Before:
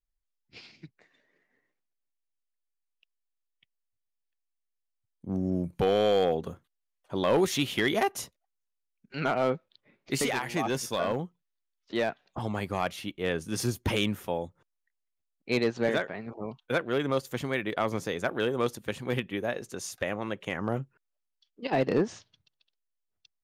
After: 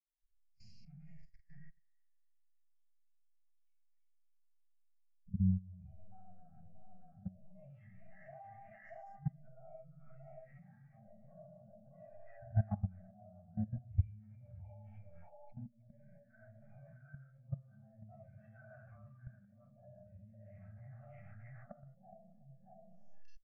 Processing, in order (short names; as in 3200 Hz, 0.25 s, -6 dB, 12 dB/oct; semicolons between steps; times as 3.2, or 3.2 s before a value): Schroeder reverb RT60 0.75 s, combs from 29 ms, DRR -9.5 dB; phaser stages 2, 0.47 Hz, lowest notch 270–2600 Hz; harmonic-percussive split percussive -13 dB; on a send: echo 0.629 s -10 dB; on the sum: compressor 6:1, threshold -35 dBFS, peak gain reduction 19 dB; treble ducked by the level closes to 890 Hz, closed at -36 dBFS; three bands offset in time highs, lows, mids 40/310 ms, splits 470/2200 Hz; level quantiser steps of 18 dB; elliptic band-stop 230–630 Hz, stop band 40 dB; fixed phaser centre 1000 Hz, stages 6; spectral expander 1.5:1; gain +13.5 dB